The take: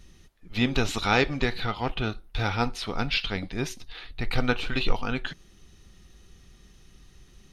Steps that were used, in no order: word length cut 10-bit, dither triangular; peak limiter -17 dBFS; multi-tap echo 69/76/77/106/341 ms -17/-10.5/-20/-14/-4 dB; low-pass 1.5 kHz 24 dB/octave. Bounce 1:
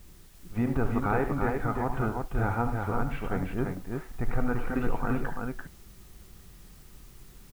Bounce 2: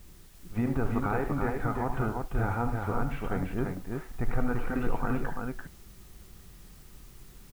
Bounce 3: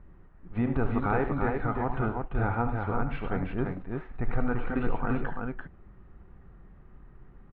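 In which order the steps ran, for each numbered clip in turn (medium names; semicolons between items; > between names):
low-pass > peak limiter > word length cut > multi-tap echo; peak limiter > low-pass > word length cut > multi-tap echo; word length cut > low-pass > peak limiter > multi-tap echo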